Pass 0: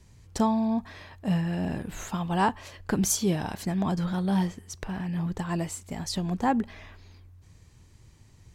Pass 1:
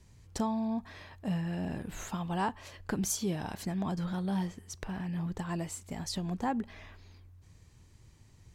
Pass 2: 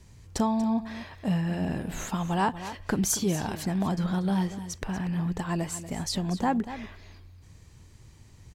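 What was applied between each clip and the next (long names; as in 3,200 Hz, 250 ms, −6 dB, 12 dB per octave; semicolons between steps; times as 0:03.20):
downward compressor 1.5 to 1, threshold −31 dBFS, peak gain reduction 5 dB; level −3.5 dB
single-tap delay 238 ms −13 dB; level +6 dB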